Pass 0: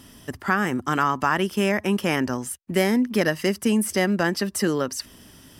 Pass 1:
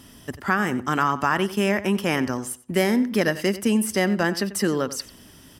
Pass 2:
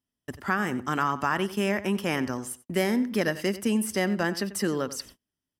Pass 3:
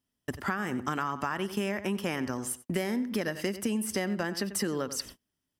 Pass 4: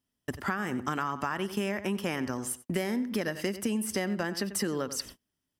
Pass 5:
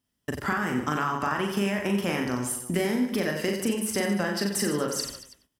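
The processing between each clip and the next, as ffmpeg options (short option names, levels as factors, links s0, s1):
-filter_complex "[0:a]asplit=2[s0][s1];[s1]adelay=92,lowpass=f=4700:p=1,volume=0.178,asplit=2[s2][s3];[s3]adelay=92,lowpass=f=4700:p=1,volume=0.24,asplit=2[s4][s5];[s5]adelay=92,lowpass=f=4700:p=1,volume=0.24[s6];[s0][s2][s4][s6]amix=inputs=4:normalize=0"
-af "agate=range=0.0158:threshold=0.00891:ratio=16:detection=peak,volume=0.596"
-af "acompressor=threshold=0.0282:ratio=6,volume=1.5"
-af anull
-af "aecho=1:1:40|90|152.5|230.6|328.3:0.631|0.398|0.251|0.158|0.1,volume=1.33"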